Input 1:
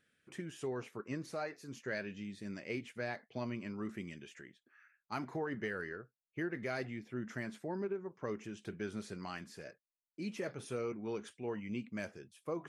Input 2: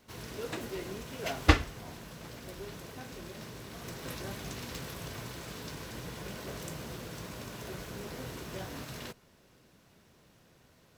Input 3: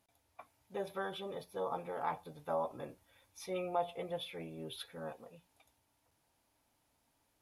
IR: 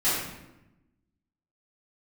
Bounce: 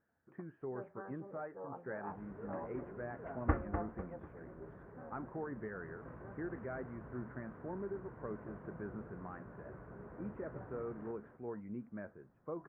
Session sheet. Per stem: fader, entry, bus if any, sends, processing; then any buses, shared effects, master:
−4.0 dB, 0.00 s, no send, no echo send, no processing
−9.5 dB, 2.00 s, no send, echo send −8 dB, no processing
−9.5 dB, 0.00 s, no send, no echo send, no processing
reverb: not used
echo: repeating echo 248 ms, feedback 36%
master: Butterworth low-pass 1,600 Hz 36 dB per octave

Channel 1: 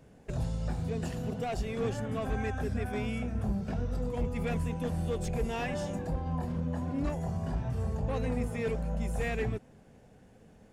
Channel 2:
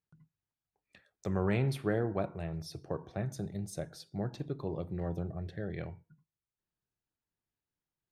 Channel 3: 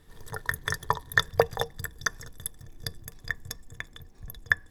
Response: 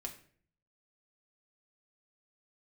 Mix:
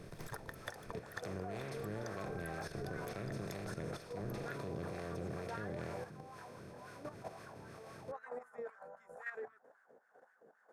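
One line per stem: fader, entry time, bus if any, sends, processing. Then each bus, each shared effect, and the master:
−2.0 dB, 0.00 s, no send, high shelf with overshoot 2,000 Hz −9.5 dB, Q 3; downward compressor 6 to 1, threshold −34 dBFS, peak gain reduction 8 dB; auto-filter high-pass sine 3.8 Hz 430–1,700 Hz
−10.0 dB, 0.00 s, no send, compressor on every frequency bin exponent 0.2
+1.5 dB, 0.00 s, no send, downward compressor 6 to 1, threshold −35 dBFS, peak gain reduction 19 dB; automatic ducking −10 dB, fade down 1.20 s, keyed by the second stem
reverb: not used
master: output level in coarse steps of 10 dB; two-band tremolo in antiphase 2.1 Hz, depth 50%, crossover 500 Hz

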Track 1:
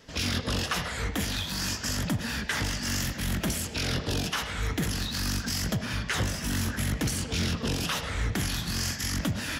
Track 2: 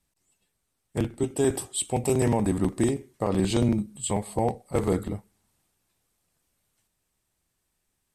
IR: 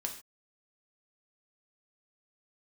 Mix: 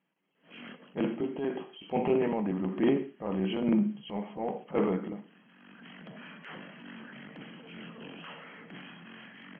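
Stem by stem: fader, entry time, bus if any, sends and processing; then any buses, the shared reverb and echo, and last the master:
−12.5 dB, 0.35 s, no send, automatic ducking −20 dB, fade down 0.25 s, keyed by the second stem
−2.0 dB, 0.00 s, send −3 dB, de-essing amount 50%; square-wave tremolo 1.1 Hz, depth 60%, duty 35%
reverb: on, pre-delay 3 ms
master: linear-phase brick-wall band-pass 150–3,300 Hz; transient designer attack −8 dB, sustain +4 dB

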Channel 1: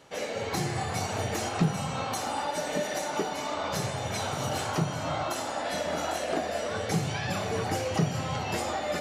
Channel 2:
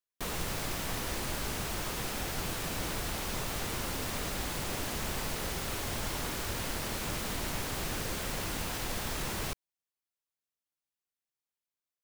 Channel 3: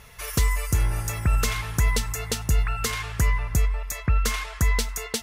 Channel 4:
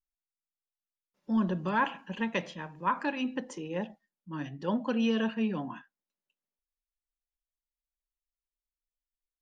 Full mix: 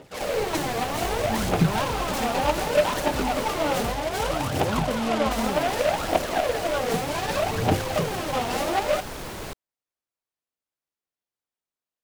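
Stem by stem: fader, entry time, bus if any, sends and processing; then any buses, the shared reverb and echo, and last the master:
−2.5 dB, 0.00 s, no send, phase shifter 0.65 Hz, delay 4.4 ms, feedback 79%
−1.5 dB, 0.00 s, muted 0:03.92–0:05.37, no send, no processing
−14.5 dB, 0.65 s, no send, no processing
+1.0 dB, 0.00 s, no send, soft clipping −29 dBFS, distortion −10 dB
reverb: not used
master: parametric band 520 Hz +6 dB 2.2 octaves; short delay modulated by noise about 1,700 Hz, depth 0.062 ms

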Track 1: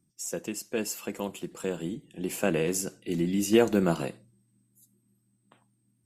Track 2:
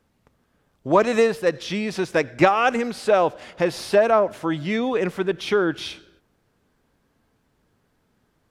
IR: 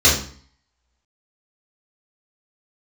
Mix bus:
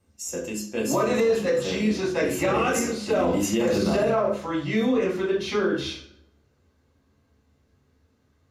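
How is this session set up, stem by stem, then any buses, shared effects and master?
−1.0 dB, 0.00 s, send −20.5 dB, no processing
−8.5 dB, 0.00 s, send −16 dB, no processing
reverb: on, RT60 0.50 s, pre-delay 3 ms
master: brickwall limiter −14 dBFS, peak gain reduction 9 dB

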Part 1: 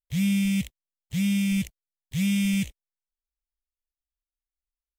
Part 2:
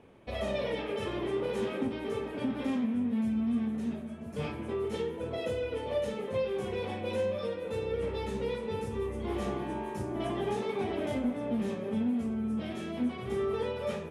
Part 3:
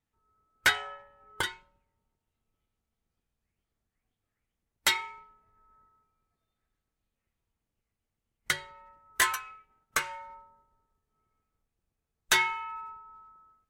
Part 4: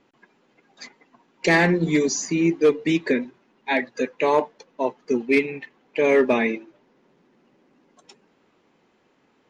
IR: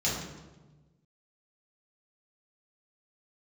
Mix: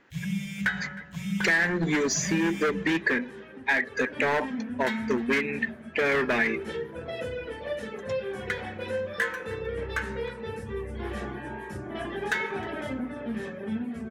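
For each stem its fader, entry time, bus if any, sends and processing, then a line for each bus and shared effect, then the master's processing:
−5.5 dB, 0.00 s, send −15 dB, no echo send, automatic ducking −12 dB, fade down 0.20 s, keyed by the fourth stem
0:03.65 −13 dB → 0:04.39 −1.5 dB, 1.75 s, send −18.5 dB, no echo send, notch filter 6,600 Hz, Q 23; reverb reduction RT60 0.72 s
−8.5 dB, 0.00 s, send −18 dB, echo send −21.5 dB, high-shelf EQ 4,400 Hz −11.5 dB
−0.5 dB, 0.00 s, no send, no echo send, gain into a clipping stage and back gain 19 dB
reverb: on, RT60 1.2 s, pre-delay 3 ms
echo: single-tap delay 311 ms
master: parametric band 1,700 Hz +14 dB 0.61 octaves; downward compressor 4 to 1, threshold −22 dBFS, peak gain reduction 10.5 dB

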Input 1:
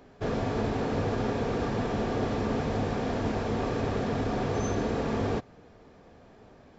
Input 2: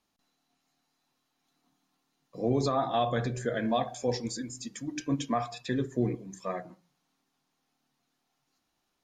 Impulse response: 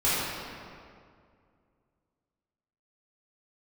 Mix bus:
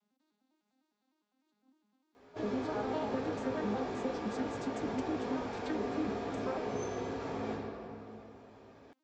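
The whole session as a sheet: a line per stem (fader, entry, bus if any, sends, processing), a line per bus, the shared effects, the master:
−5.0 dB, 2.15 s, send −9.5 dB, high-pass filter 280 Hz 6 dB per octave; downward compressor, threshold −34 dBFS, peak gain reduction 7 dB; multi-voice chorus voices 4, 0.23 Hz, delay 17 ms, depth 1.8 ms
+2.0 dB, 0.00 s, no send, vocoder with an arpeggio as carrier major triad, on G#3, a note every 101 ms; downward compressor, threshold −37 dBFS, peak gain reduction 15 dB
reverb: on, RT60 2.2 s, pre-delay 3 ms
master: no processing

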